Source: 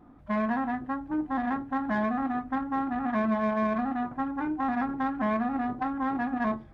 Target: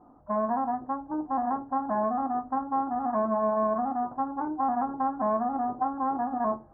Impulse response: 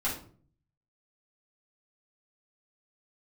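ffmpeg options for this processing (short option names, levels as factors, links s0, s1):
-af "lowpass=f=1200:w=0.5412,lowpass=f=1200:w=1.3066,equalizer=f=820:w=0.5:g=13.5,volume=0.376"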